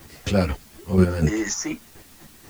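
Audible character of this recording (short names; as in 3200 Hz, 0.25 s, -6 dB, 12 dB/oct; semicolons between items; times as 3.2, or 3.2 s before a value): chopped level 4.1 Hz, depth 65%, duty 25%; a quantiser's noise floor 10-bit, dither triangular; a shimmering, thickened sound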